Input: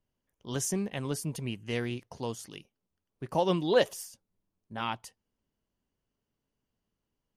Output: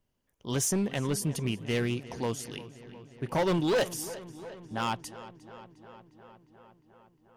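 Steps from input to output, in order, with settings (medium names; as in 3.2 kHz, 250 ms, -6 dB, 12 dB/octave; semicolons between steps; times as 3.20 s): hard clipper -27.5 dBFS, distortion -7 dB; filtered feedback delay 356 ms, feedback 74%, low-pass 4.8 kHz, level -16.5 dB; trim +4.5 dB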